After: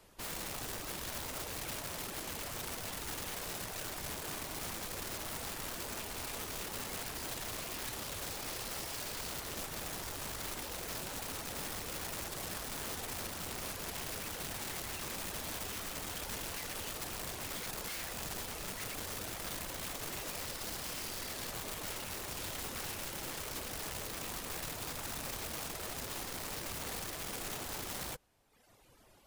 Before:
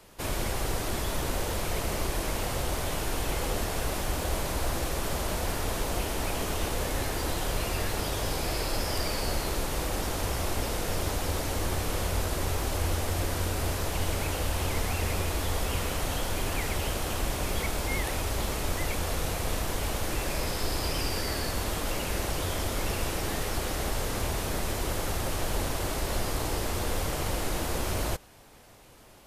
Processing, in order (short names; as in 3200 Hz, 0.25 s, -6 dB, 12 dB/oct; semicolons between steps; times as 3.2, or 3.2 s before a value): reverb removal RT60 1.1 s; wrapped overs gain 29 dB; gain -7 dB